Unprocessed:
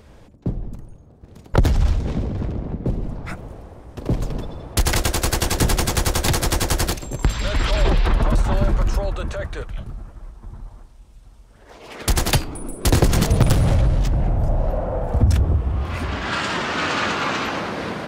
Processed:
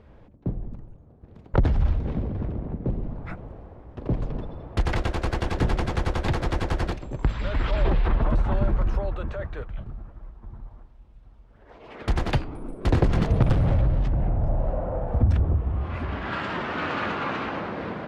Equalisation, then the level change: air absorption 110 m; bell 6500 Hz -11 dB 1.8 oct; -4.0 dB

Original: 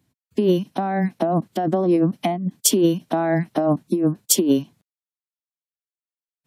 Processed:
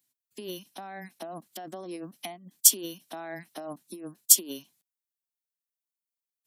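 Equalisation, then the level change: differentiator; low shelf 480 Hz +7.5 dB; 0.0 dB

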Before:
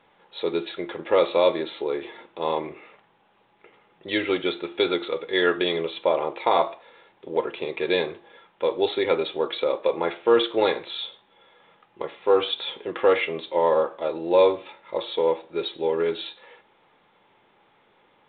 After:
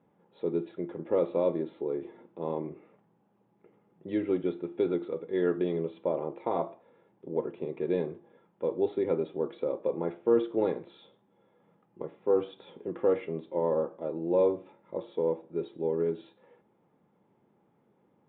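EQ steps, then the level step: band-pass 180 Hz, Q 1.2; air absorption 66 m; +3.0 dB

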